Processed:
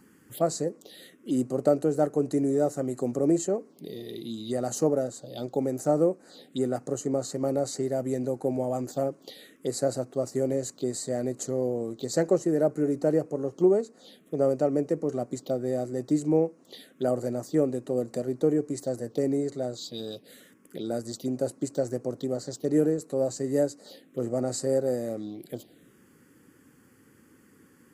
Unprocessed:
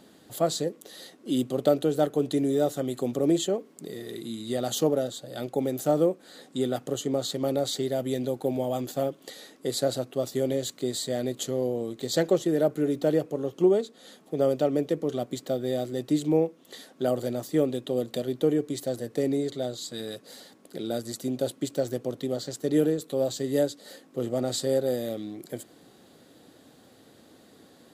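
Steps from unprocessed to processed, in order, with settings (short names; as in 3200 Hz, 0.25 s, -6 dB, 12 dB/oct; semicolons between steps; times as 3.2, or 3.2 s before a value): envelope phaser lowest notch 600 Hz, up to 3400 Hz, full sweep at -28 dBFS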